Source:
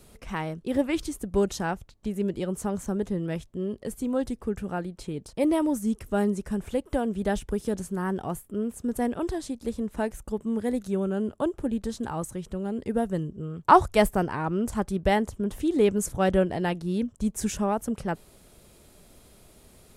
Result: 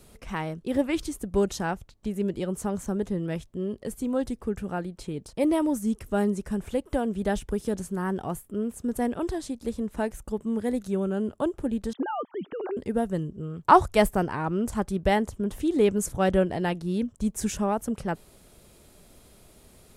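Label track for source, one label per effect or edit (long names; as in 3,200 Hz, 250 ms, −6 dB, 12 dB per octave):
11.930000	12.770000	three sine waves on the formant tracks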